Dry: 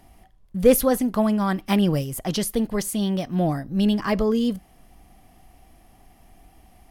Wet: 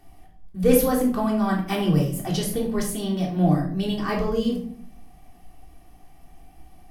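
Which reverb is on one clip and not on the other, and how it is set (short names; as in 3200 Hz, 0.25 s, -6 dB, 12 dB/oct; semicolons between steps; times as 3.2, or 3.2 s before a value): shoebox room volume 690 m³, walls furnished, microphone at 3.5 m; gain -5.5 dB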